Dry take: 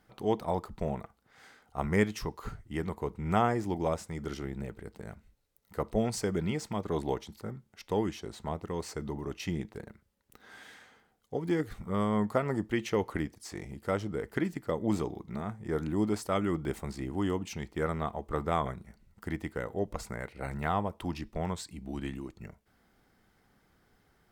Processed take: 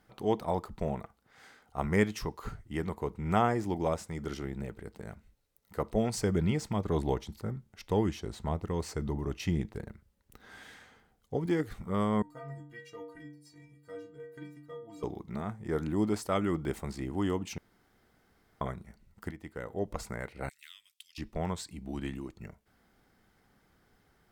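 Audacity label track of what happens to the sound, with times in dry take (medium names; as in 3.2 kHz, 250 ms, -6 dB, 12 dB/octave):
6.180000	11.460000	bass shelf 120 Hz +11 dB
12.220000	15.030000	inharmonic resonator 140 Hz, decay 0.79 s, inharmonicity 0.03
17.580000	18.610000	room tone
19.310000	19.930000	fade in, from -13 dB
20.490000	21.180000	inverse Chebyshev high-pass stop band from 860 Hz, stop band 60 dB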